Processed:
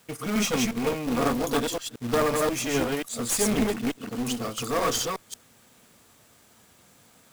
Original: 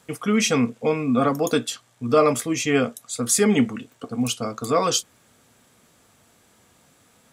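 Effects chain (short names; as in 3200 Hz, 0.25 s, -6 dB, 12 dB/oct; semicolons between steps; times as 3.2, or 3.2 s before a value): reverse delay 0.178 s, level -2 dB; one-sided clip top -25 dBFS; companded quantiser 4-bit; gain -4 dB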